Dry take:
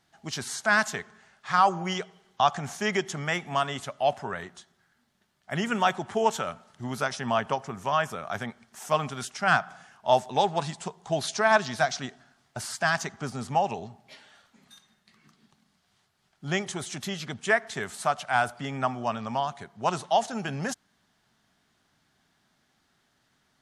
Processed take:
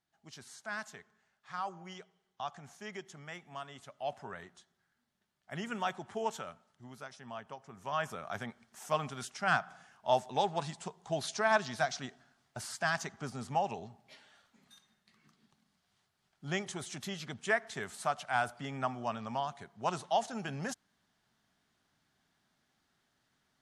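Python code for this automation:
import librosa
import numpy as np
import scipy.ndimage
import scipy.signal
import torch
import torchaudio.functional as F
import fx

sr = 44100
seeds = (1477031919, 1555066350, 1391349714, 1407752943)

y = fx.gain(x, sr, db=fx.line((3.7, -17.5), (4.23, -11.0), (6.35, -11.0), (6.99, -18.5), (7.58, -18.5), (8.05, -7.0)))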